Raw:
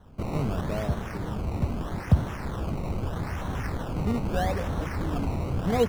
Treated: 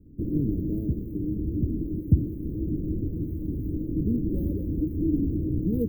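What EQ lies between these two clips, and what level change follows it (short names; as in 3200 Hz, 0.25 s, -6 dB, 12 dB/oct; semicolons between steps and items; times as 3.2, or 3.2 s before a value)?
inverse Chebyshev band-stop 730–8600 Hz, stop band 40 dB; bell 310 Hz +15 dB 0.28 oct; bell 3800 Hz +9.5 dB 0.22 oct; 0.0 dB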